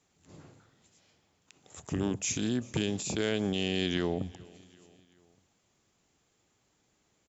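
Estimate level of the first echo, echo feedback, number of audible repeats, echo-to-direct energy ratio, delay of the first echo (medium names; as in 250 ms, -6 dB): -24.0 dB, 54%, 3, -22.5 dB, 389 ms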